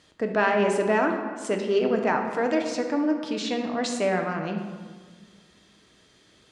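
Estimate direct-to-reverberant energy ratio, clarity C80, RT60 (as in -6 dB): 3.0 dB, 7.0 dB, 1.5 s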